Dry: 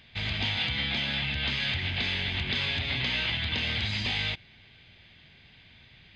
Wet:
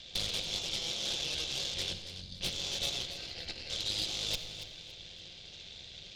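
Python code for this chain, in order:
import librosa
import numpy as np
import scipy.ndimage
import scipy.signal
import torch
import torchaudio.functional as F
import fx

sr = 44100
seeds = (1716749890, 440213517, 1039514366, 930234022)

p1 = fx.over_compress(x, sr, threshold_db=-35.0, ratio=-0.5)
p2 = fx.ellip_bandstop(p1, sr, low_hz=150.0, high_hz=5300.0, order=3, stop_db=40, at=(1.93, 2.41))
p3 = fx.fixed_phaser(p2, sr, hz=740.0, stages=8, at=(3.05, 3.7))
p4 = fx.cheby_harmonics(p3, sr, harmonics=(8,), levels_db=(-11,), full_scale_db=-20.0)
p5 = fx.graphic_eq_10(p4, sr, hz=(125, 250, 500, 1000, 2000, 4000), db=(-5, -6, 7, -8, -10, 12))
p6 = p5 + fx.echo_feedback(p5, sr, ms=281, feedback_pct=30, wet_db=-11.5, dry=0)
p7 = fx.room_shoebox(p6, sr, seeds[0], volume_m3=3200.0, walls='mixed', distance_m=0.88)
y = F.gain(torch.from_numpy(p7), -5.5).numpy()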